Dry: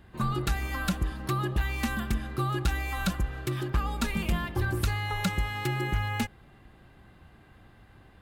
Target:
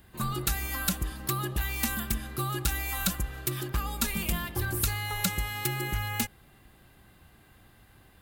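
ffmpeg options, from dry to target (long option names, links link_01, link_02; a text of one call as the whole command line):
ffmpeg -i in.wav -af "aemphasis=mode=production:type=75fm,volume=-2.5dB" out.wav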